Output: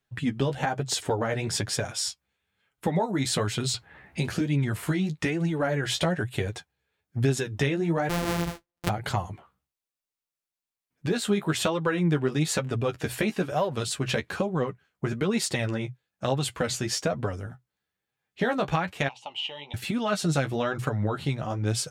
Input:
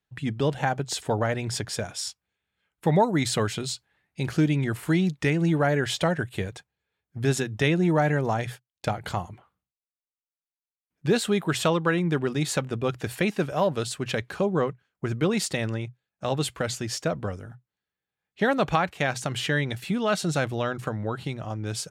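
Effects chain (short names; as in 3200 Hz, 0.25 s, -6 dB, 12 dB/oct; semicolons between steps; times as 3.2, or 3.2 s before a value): 8.09–8.89 sample sorter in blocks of 256 samples; 19.08–19.74 double band-pass 1600 Hz, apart 1.7 oct; compressor 6:1, threshold -26 dBFS, peak gain reduction 10.5 dB; flange 1.1 Hz, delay 6.9 ms, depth 8.6 ms, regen +20%; 3.74–4.41 three-band squash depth 70%; gain +7 dB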